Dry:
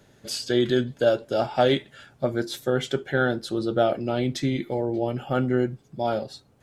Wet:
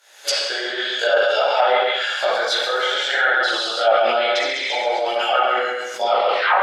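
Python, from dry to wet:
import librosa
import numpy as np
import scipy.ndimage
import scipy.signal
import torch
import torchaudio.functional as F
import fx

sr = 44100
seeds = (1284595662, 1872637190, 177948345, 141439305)

y = fx.tape_stop_end(x, sr, length_s=0.55)
y = fx.recorder_agc(y, sr, target_db=-11.0, rise_db_per_s=47.0, max_gain_db=30)
y = scipy.signal.sosfilt(scipy.signal.butter(4, 600.0, 'highpass', fs=sr, output='sos'), y)
y = fx.tilt_shelf(y, sr, db=-6.0, hz=1100.0)
y = fx.rev_schroeder(y, sr, rt60_s=0.46, comb_ms=30, drr_db=-1.5)
y = fx.chorus_voices(y, sr, voices=2, hz=0.58, base_ms=18, depth_ms=4.0, mix_pct=60)
y = fx.echo_feedback(y, sr, ms=136, feedback_pct=28, wet_db=-3)
y = fx.env_lowpass_down(y, sr, base_hz=1600.0, full_db=-18.0)
y = fx.sustainer(y, sr, db_per_s=32.0)
y = y * 10.0 ** (6.5 / 20.0)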